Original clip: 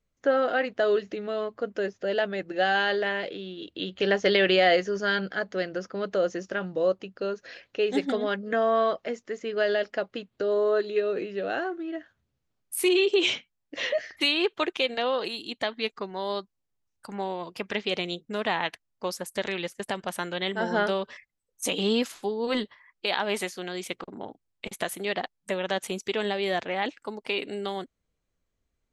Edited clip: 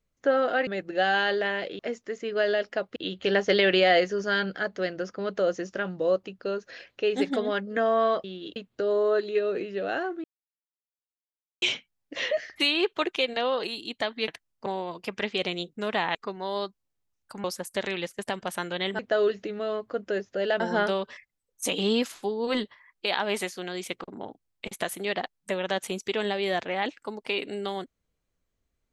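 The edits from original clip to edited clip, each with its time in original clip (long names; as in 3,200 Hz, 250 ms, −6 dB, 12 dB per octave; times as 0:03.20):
0:00.67–0:02.28: move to 0:20.60
0:03.40–0:03.72: swap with 0:09.00–0:10.17
0:11.85–0:13.23: silence
0:15.89–0:17.18: swap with 0:18.67–0:19.05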